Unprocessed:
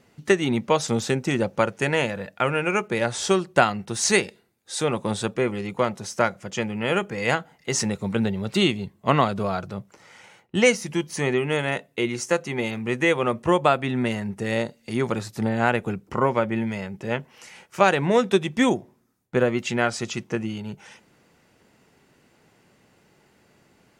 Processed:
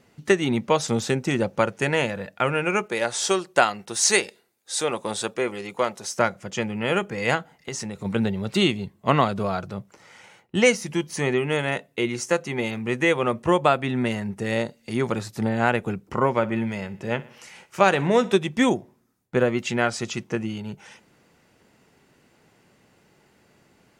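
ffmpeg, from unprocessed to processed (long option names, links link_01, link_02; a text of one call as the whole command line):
ffmpeg -i in.wav -filter_complex "[0:a]asettb=1/sr,asplit=3[link_01][link_02][link_03];[link_01]atrim=end=2.864[link_04];[link_02]atrim=start=2.86:end=6.17,asetpts=PTS-STARTPTS,afade=type=in:duration=0.004:curve=qsin,afade=type=out:start_time=3.306:duration=0.004:curve=qsin,bass=frequency=250:gain=-12,treble=frequency=4000:gain=4[link_05];[link_03]atrim=start=6.166[link_06];[link_04][link_05]acrossfade=duration=0.004:curve1=hsin:curve2=qsin[link_07];[link_07][link_06]acrossfade=duration=0.004:curve1=qsin:curve2=hsin,asplit=3[link_08][link_09][link_10];[link_08]afade=type=out:start_time=7.54:duration=0.02[link_11];[link_09]acompressor=threshold=-28dB:ratio=6:attack=3.2:release=140:knee=1:detection=peak,afade=type=in:start_time=7.54:duration=0.02,afade=type=out:start_time=8.04:duration=0.02[link_12];[link_10]afade=type=in:start_time=8.04:duration=0.02[link_13];[link_11][link_12][link_13]amix=inputs=3:normalize=0,asettb=1/sr,asplit=3[link_14][link_15][link_16];[link_14]atrim=end=16.304[link_17];[link_15]atrim=start=16.3:end=18.38,asetpts=PTS-STARTPTS,afade=type=in:duration=0.004:curve=qsin,afade=type=out:start_time=2.076:duration=0.004:curve=qsin,aecho=1:1:61|122|183|244:0.112|0.0583|0.0303|0.0158,atrim=end_sample=91728[link_18];[link_16]atrim=start=18.376[link_19];[link_17][link_18]acrossfade=duration=0.004:curve1=hsin:curve2=qsin[link_20];[link_20][link_19]acrossfade=duration=0.004:curve1=qsin:curve2=hsin" out.wav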